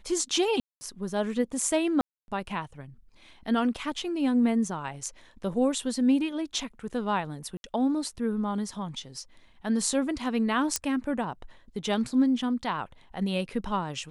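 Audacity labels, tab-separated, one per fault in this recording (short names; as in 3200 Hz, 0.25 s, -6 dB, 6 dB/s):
0.600000	0.810000	gap 0.21 s
2.010000	2.280000	gap 0.271 s
7.570000	7.640000	gap 71 ms
10.760000	10.760000	pop -10 dBFS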